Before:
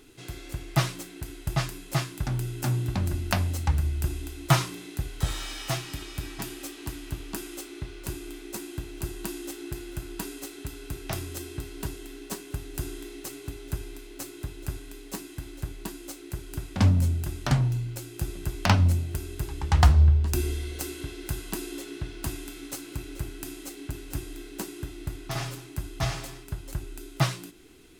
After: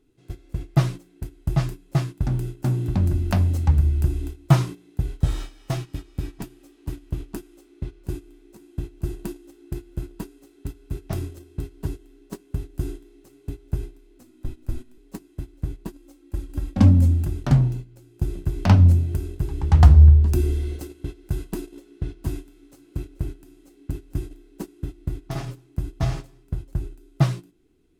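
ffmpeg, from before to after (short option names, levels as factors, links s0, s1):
-filter_complex "[0:a]asettb=1/sr,asplit=3[s0][s1][s2];[s0]atrim=end=14.194[s3];[s1]atrim=start=14.19:end=14.98,asetpts=PTS-STARTPTS,afade=t=in:d=0.004:c=qsin,afade=t=out:st=0.786:d=0.004:c=qsin,afreqshift=-35[s4];[s2]atrim=start=14.976[s5];[s3][s4]acrossfade=d=0.004:c1=hsin:c2=qsin[s6];[s6][s5]acrossfade=d=0.004:c1=qsin:c2=hsin,asettb=1/sr,asplit=3[s7][s8][s9];[s7]atrim=end=15.934[s10];[s8]atrim=start=15.93:end=17.25,asetpts=PTS-STARTPTS,afade=t=in:d=0.004:c=qsin,afade=t=out:st=1.316:d=0.004:c=qsin,aecho=1:1:3.7:0.65,atrim=end_sample=58212[s11];[s9]atrim=start=17.246[s12];[s10][s11]acrossfade=d=0.004:c1=hsin:c2=qsin[s13];[s13][s12]acrossfade=d=0.004:c1=qsin:c2=hsin,tiltshelf=f=670:g=7,bandreject=f=60:t=h:w=6,bandreject=f=120:t=h:w=6,agate=range=0.178:threshold=0.0316:ratio=16:detection=peak,volume=1.12"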